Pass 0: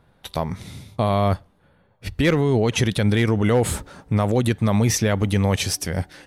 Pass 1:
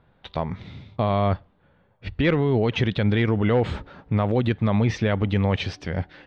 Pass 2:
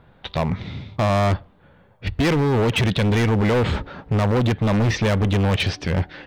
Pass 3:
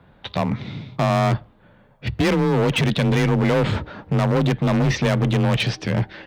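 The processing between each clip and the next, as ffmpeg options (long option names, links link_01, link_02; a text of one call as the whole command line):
ffmpeg -i in.wav -af "lowpass=frequency=3700:width=0.5412,lowpass=frequency=3700:width=1.3066,volume=-2dB" out.wav
ffmpeg -i in.wav -af "asoftclip=type=hard:threshold=-24dB,volume=8dB" out.wav
ffmpeg -i in.wav -af "afreqshift=25" out.wav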